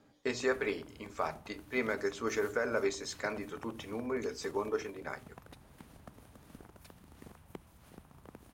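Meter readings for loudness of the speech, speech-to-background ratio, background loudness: −36.0 LKFS, 19.0 dB, −55.0 LKFS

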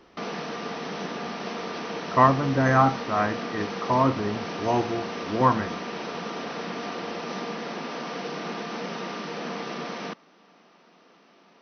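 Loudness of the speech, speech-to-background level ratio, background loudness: −24.0 LKFS, 9.0 dB, −33.0 LKFS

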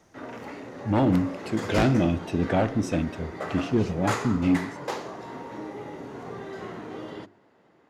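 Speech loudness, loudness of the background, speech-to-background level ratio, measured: −25.5 LKFS, −36.0 LKFS, 10.5 dB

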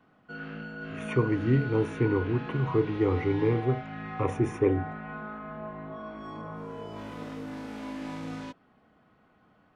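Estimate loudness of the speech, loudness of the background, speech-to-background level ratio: −28.0 LKFS, −39.0 LKFS, 11.0 dB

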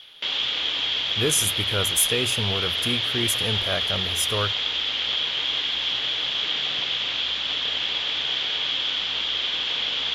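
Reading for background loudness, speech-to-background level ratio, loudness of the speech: −23.0 LKFS, −3.0 dB, −26.0 LKFS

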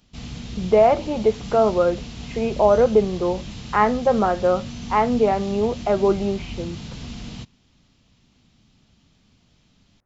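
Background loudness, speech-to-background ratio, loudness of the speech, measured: −35.0 LKFS, 15.0 dB, −20.0 LKFS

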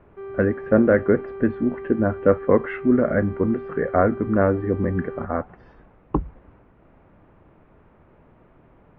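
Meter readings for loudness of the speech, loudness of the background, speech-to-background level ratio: −22.0 LKFS, −35.5 LKFS, 13.5 dB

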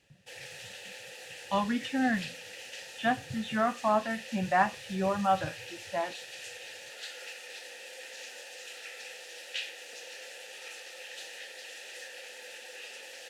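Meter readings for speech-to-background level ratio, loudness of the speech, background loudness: 12.5 dB, −30.5 LKFS, −43.0 LKFS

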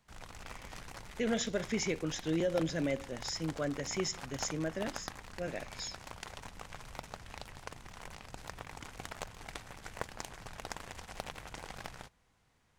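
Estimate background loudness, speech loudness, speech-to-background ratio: −47.0 LKFS, −36.0 LKFS, 11.0 dB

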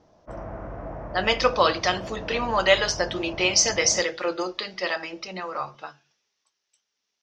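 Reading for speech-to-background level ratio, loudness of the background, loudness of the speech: 14.0 dB, −37.5 LKFS, −23.5 LKFS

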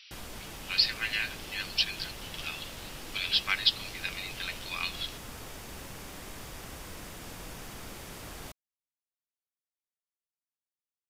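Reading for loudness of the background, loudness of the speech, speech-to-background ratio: −43.5 LKFS, −30.5 LKFS, 13.0 dB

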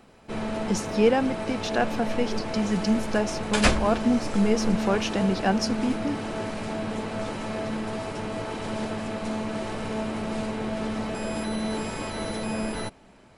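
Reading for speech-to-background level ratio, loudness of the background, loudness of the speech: 4.0 dB, −30.5 LKFS, −26.5 LKFS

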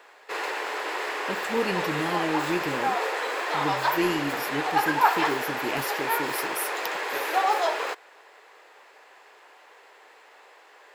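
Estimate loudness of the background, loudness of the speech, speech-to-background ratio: −27.0 LKFS, −32.0 LKFS, −5.0 dB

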